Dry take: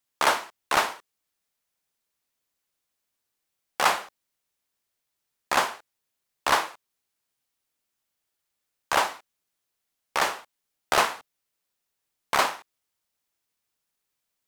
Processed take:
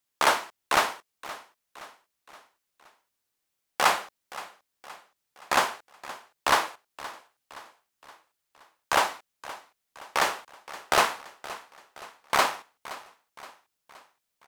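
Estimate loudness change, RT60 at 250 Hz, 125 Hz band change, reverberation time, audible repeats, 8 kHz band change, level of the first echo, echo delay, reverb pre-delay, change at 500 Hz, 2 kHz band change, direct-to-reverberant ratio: −0.5 dB, no reverb audible, 0.0 dB, no reverb audible, 3, 0.0 dB, −17.0 dB, 521 ms, no reverb audible, 0.0 dB, 0.0 dB, no reverb audible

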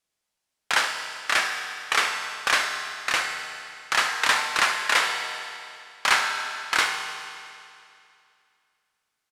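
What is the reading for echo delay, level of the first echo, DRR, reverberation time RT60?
72 ms, −12.5 dB, 2.5 dB, 2.5 s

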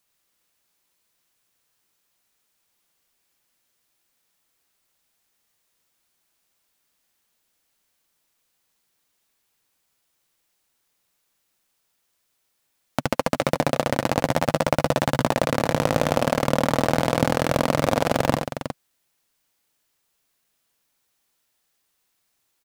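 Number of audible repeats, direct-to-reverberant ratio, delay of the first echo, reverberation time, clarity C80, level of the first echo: 2, no reverb audible, 73 ms, no reverb audible, no reverb audible, −7.5 dB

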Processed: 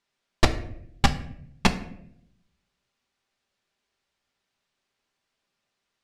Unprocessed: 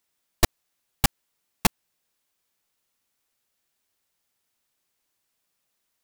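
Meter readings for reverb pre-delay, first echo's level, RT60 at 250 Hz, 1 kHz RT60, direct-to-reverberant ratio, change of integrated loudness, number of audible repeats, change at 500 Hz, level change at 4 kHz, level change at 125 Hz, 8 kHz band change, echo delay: 5 ms, no echo audible, 0.95 s, 0.60 s, 5.0 dB, −0.5 dB, no echo audible, +3.0 dB, +0.5 dB, +3.0 dB, −7.0 dB, no echo audible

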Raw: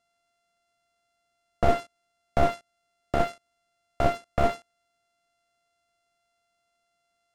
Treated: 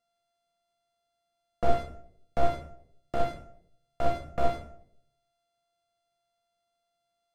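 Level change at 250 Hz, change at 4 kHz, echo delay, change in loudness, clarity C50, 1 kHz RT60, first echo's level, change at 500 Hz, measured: −6.0 dB, −5.0 dB, no echo audible, −4.0 dB, 9.5 dB, 0.55 s, no echo audible, −3.0 dB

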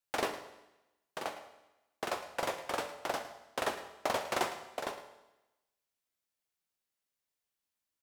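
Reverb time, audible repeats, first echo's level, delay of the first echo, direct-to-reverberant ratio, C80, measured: 0.95 s, 1, −14.5 dB, 109 ms, 6.5 dB, 10.5 dB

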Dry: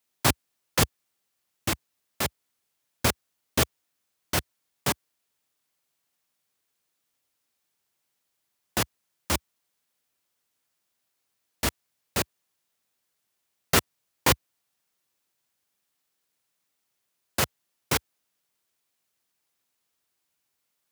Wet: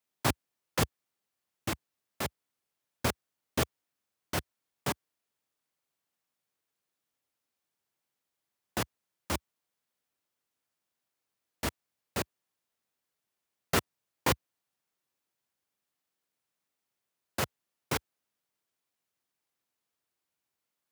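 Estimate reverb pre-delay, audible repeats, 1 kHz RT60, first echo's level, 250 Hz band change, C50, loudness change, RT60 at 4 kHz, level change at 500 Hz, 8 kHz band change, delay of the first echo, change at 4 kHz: no reverb audible, no echo audible, no reverb audible, no echo audible, −4.5 dB, no reverb audible, −7.0 dB, no reverb audible, −4.5 dB, −9.0 dB, no echo audible, −8.0 dB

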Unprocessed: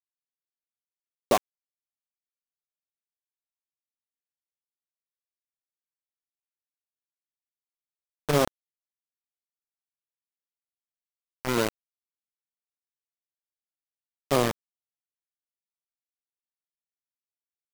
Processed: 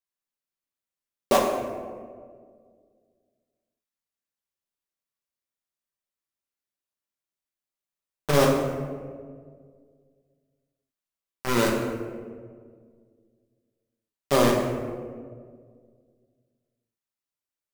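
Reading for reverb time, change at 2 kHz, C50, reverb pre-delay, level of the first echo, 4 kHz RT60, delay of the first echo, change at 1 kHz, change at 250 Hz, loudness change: 1.9 s, +3.5 dB, 3.0 dB, 5 ms, no echo audible, 0.85 s, no echo audible, +3.5 dB, +5.5 dB, +2.0 dB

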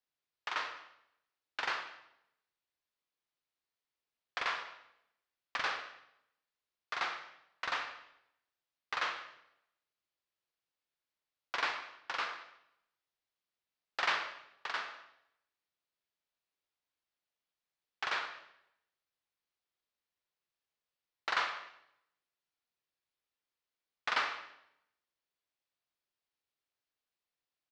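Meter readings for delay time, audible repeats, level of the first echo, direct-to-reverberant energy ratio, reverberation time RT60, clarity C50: 195 ms, 1, −21.5 dB, 7.0 dB, 0.80 s, 9.0 dB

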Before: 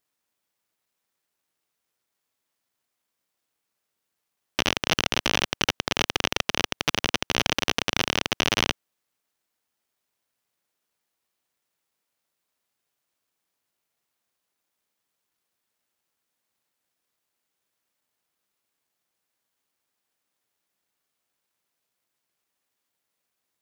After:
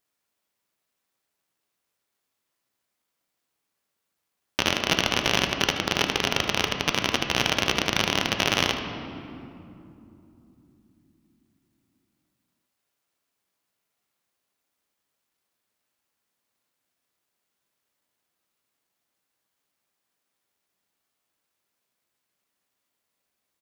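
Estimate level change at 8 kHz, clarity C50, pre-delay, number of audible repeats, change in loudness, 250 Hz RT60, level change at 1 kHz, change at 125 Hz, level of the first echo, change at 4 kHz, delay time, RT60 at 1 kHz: +0.5 dB, 5.5 dB, 5 ms, 1, +1.0 dB, 5.2 s, +1.5 dB, +2.0 dB, −12.0 dB, +1.0 dB, 78 ms, 2.6 s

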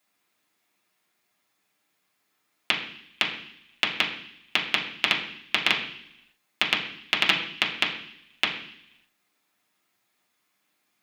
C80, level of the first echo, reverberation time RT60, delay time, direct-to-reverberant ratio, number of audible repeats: 10.5 dB, no echo audible, 0.70 s, no echo audible, −3.5 dB, no echo audible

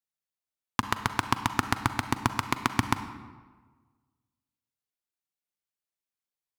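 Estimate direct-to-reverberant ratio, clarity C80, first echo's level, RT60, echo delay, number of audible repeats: 9.5 dB, 12.0 dB, no echo audible, 1.4 s, no echo audible, no echo audible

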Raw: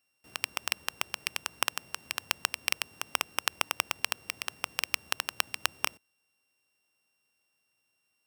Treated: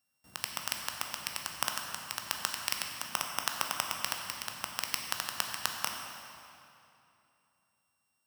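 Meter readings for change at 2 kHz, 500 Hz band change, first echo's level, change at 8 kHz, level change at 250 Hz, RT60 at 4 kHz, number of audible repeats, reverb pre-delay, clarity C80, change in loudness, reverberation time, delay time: −4.5 dB, −3.0 dB, no echo audible, 0.0 dB, −0.5 dB, 2.2 s, no echo audible, 13 ms, 4.0 dB, −2.0 dB, 2.8 s, no echo audible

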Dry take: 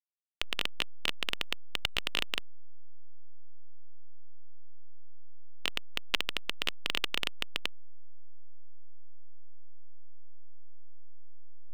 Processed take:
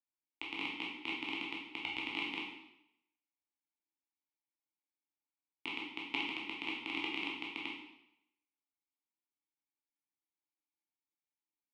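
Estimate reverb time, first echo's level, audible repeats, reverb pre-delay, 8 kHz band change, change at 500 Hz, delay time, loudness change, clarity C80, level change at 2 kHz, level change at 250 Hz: 0.80 s, no echo audible, no echo audible, 6 ms, below −15 dB, −5.5 dB, no echo audible, −5.0 dB, 6.0 dB, −2.5 dB, +5.5 dB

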